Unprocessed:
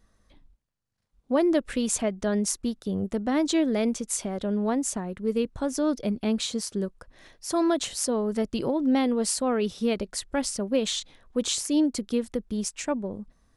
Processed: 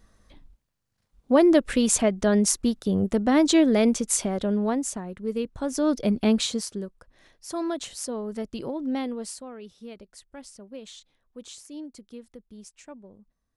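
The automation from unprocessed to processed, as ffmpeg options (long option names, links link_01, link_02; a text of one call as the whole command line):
ffmpeg -i in.wav -af "volume=13dB,afade=type=out:start_time=4.17:duration=0.78:silence=0.421697,afade=type=in:start_time=5.54:duration=0.71:silence=0.398107,afade=type=out:start_time=6.25:duration=0.59:silence=0.281838,afade=type=out:start_time=9.01:duration=0.49:silence=0.298538" out.wav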